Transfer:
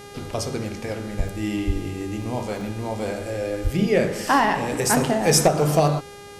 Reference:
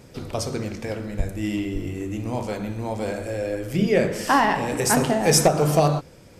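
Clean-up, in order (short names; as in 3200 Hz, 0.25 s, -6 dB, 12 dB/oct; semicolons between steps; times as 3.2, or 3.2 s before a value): de-hum 405.8 Hz, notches 30; 1.66–1.78 HPF 140 Hz 24 dB/oct; 3.63–3.75 HPF 140 Hz 24 dB/oct; interpolate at 1.28/2.22/2.61, 1.8 ms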